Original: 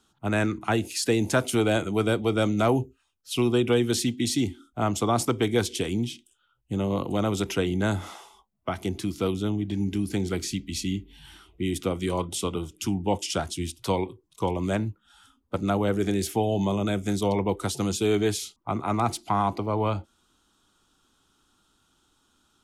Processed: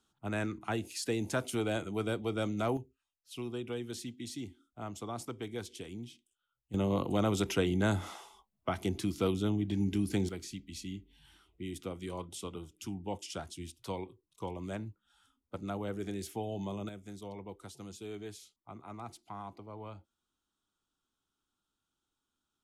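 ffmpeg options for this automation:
ffmpeg -i in.wav -af "asetnsamples=nb_out_samples=441:pad=0,asendcmd='2.77 volume volume -16.5dB;6.74 volume volume -4dB;10.29 volume volume -13dB;16.89 volume volume -20dB',volume=-10dB" out.wav

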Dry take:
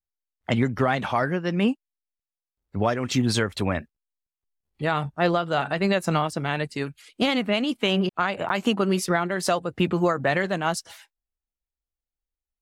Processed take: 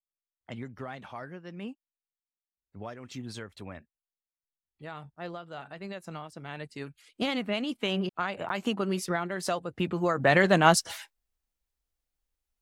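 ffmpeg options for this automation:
ffmpeg -i in.wav -af "volume=5.5dB,afade=type=in:start_time=6.28:duration=1:silence=0.298538,afade=type=in:start_time=10.03:duration=0.56:silence=0.237137" out.wav

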